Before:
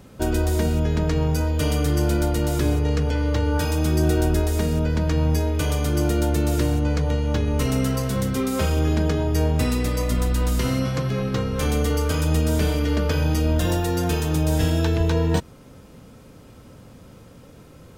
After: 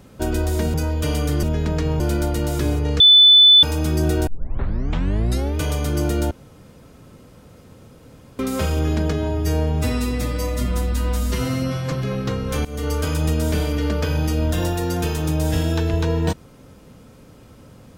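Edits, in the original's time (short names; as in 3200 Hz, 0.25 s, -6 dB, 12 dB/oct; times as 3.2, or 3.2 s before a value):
0.74–1.31 move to 2
3–3.63 bleep 3500 Hz -6.5 dBFS
4.27 tape start 1.32 s
6.31–8.39 room tone
9.13–10.99 stretch 1.5×
11.72–11.99 fade in, from -21 dB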